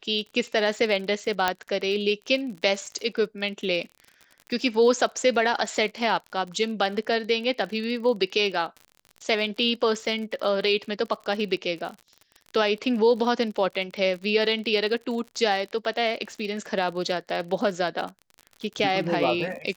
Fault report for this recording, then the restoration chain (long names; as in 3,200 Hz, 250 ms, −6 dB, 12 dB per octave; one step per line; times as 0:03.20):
surface crackle 44 per second −34 dBFS
0:01.48: click −7 dBFS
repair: click removal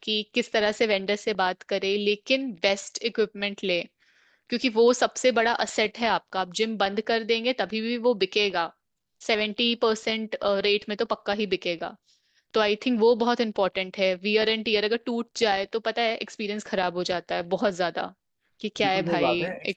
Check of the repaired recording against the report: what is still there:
0:01.48: click